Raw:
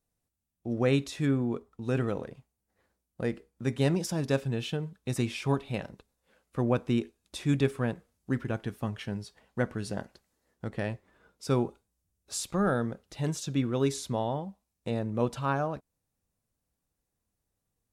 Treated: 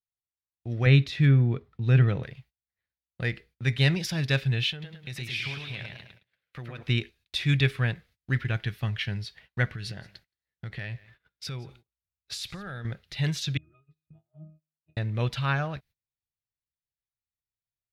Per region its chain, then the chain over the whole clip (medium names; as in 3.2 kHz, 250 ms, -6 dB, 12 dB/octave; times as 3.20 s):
0.86–2.23 s: high-pass 100 Hz + tilt EQ -2.5 dB/octave
4.71–6.83 s: high-pass 150 Hz 6 dB/octave + compression 3:1, threshold -40 dBFS + modulated delay 107 ms, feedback 45%, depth 121 cents, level -4 dB
9.73–12.85 s: compression 5:1, threshold -36 dBFS + delay 172 ms -21.5 dB
13.57–14.97 s: compression, threshold -31 dBFS + treble shelf 4.7 kHz -10.5 dB + pitch-class resonator D#, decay 0.52 s
whole clip: graphic EQ 125/250/500/1000/2000/4000/8000 Hz +6/-11/-6/-8/+9/+9/-11 dB; level rider gain up to 4 dB; gate -54 dBFS, range -23 dB